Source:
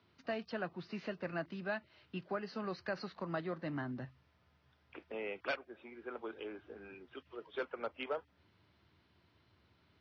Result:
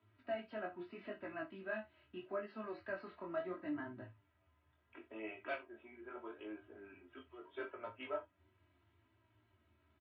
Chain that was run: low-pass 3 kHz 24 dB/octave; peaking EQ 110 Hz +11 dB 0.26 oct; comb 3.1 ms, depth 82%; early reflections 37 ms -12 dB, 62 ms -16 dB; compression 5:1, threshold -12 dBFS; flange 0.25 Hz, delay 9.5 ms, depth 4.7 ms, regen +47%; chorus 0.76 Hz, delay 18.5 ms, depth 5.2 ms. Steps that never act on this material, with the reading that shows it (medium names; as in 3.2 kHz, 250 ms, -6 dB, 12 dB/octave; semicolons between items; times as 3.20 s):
compression, threshold -12 dBFS: peak at its input -22.5 dBFS